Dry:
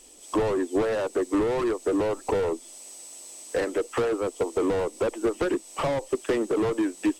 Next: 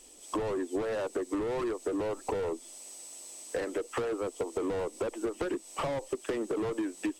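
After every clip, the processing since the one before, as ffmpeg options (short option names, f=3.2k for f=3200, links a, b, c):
-af "acompressor=threshold=-26dB:ratio=6,volume=-3dB"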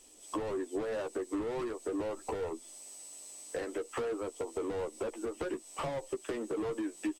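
-filter_complex "[0:a]asplit=2[a][b];[b]adelay=13,volume=-7dB[c];[a][c]amix=inputs=2:normalize=0,volume=-4.5dB"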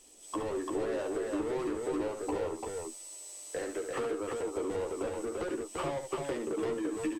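-af "aecho=1:1:70|342:0.422|0.708"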